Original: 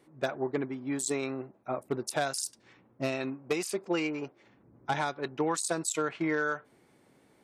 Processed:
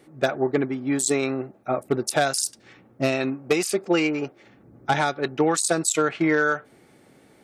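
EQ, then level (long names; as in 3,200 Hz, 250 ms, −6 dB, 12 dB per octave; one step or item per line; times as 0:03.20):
notch filter 1,000 Hz, Q 7.1
+9.0 dB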